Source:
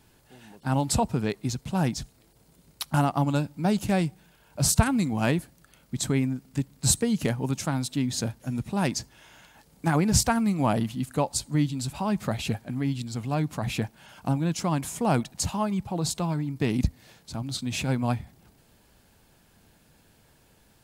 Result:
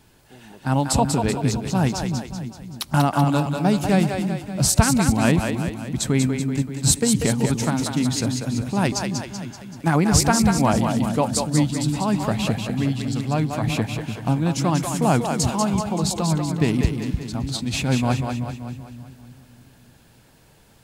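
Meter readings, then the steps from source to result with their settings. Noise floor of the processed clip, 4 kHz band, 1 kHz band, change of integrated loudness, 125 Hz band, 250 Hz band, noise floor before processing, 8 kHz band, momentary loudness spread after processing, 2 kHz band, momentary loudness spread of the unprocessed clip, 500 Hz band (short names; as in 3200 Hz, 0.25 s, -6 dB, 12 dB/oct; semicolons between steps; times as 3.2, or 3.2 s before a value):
-53 dBFS, +6.0 dB, +6.0 dB, +5.5 dB, +6.0 dB, +6.0 dB, -61 dBFS, +5.5 dB, 9 LU, +6.0 dB, 9 LU, +6.0 dB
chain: bell 13000 Hz -2.5 dB 0.71 oct; on a send: split-band echo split 310 Hz, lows 0.295 s, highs 0.191 s, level -5 dB; on the sum: gain +4.5 dB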